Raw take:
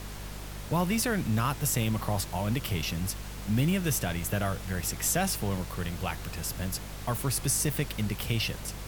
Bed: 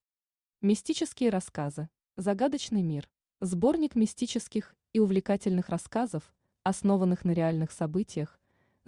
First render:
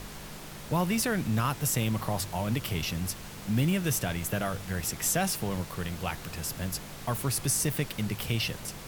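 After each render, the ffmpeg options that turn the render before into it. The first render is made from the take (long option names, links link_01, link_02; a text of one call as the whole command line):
ffmpeg -i in.wav -af "bandreject=frequency=50:width_type=h:width=4,bandreject=frequency=100:width_type=h:width=4" out.wav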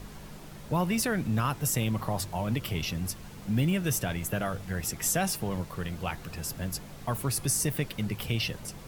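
ffmpeg -i in.wav -af "afftdn=noise_reduction=7:noise_floor=-43" out.wav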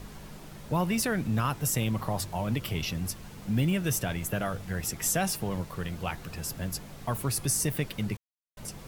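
ffmpeg -i in.wav -filter_complex "[0:a]asplit=3[link_01][link_02][link_03];[link_01]atrim=end=8.17,asetpts=PTS-STARTPTS,afade=type=out:start_time=8.166:duration=0.004:curve=hsin[link_04];[link_02]atrim=start=8.17:end=8.57,asetpts=PTS-STARTPTS,volume=0[link_05];[link_03]atrim=start=8.57,asetpts=PTS-STARTPTS,afade=type=in:duration=0.004:curve=hsin[link_06];[link_04][link_05][link_06]concat=n=3:v=0:a=1" out.wav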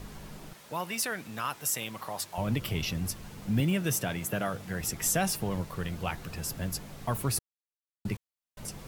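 ffmpeg -i in.wav -filter_complex "[0:a]asettb=1/sr,asplit=3[link_01][link_02][link_03];[link_01]atrim=end=0.534[link_04];[link_02]atrim=start=0.53:end=2.38,asetpts=PTS-STARTPTS,afade=type=in:duration=0.004:curve=qsin,afade=type=out:start_time=1.846:duration=0.004:curve=qsin,highpass=frequency=930:poles=1[link_05];[link_03]atrim=start=2.376[link_06];[link_04][link_05]acrossfade=duration=0.004:curve1=hsin:curve2=qsin[link_07];[link_07][link_06]acrossfade=duration=0.004:curve1=qsin:curve2=hsin,asettb=1/sr,asplit=3[link_08][link_09][link_10];[link_08]atrim=end=3.604[link_11];[link_09]atrim=start=3.6:end=4.81,asetpts=PTS-STARTPTS,afade=type=in:duration=0.004:curve=qsin,afade=type=out:start_time=1.206:duration=0.004:curve=qsin,highpass=120[link_12];[link_10]atrim=start=4.806[link_13];[link_11][link_12]acrossfade=duration=0.004:curve1=hsin:curve2=qsin[link_14];[link_14][link_13]acrossfade=duration=0.004:curve1=qsin:curve2=hsin,asplit=3[link_15][link_16][link_17];[link_15]atrim=end=7.39,asetpts=PTS-STARTPTS,afade=type=out:start_time=7.386:duration=0.004:curve=hsin[link_18];[link_16]atrim=start=7.39:end=8.05,asetpts=PTS-STARTPTS,volume=0[link_19];[link_17]atrim=start=8.05,asetpts=PTS-STARTPTS,afade=type=in:duration=0.004:curve=hsin[link_20];[link_18][link_19][link_20]concat=n=3:v=0:a=1" out.wav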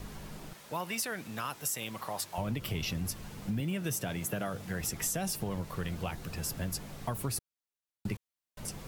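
ffmpeg -i in.wav -filter_complex "[0:a]acrossover=split=690|3300[link_01][link_02][link_03];[link_02]alimiter=level_in=3.5dB:limit=-24dB:level=0:latency=1:release=315,volume=-3.5dB[link_04];[link_01][link_04][link_03]amix=inputs=3:normalize=0,acompressor=threshold=-30dB:ratio=6" out.wav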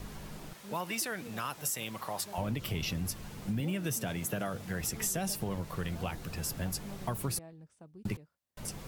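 ffmpeg -i in.wav -i bed.wav -filter_complex "[1:a]volume=-23dB[link_01];[0:a][link_01]amix=inputs=2:normalize=0" out.wav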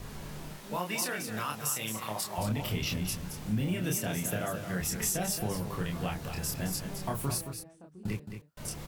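ffmpeg -i in.wav -filter_complex "[0:a]asplit=2[link_01][link_02];[link_02]adelay=28,volume=-2.5dB[link_03];[link_01][link_03]amix=inputs=2:normalize=0,aecho=1:1:220:0.376" out.wav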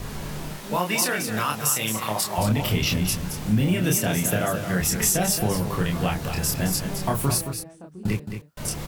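ffmpeg -i in.wav -af "volume=9.5dB" out.wav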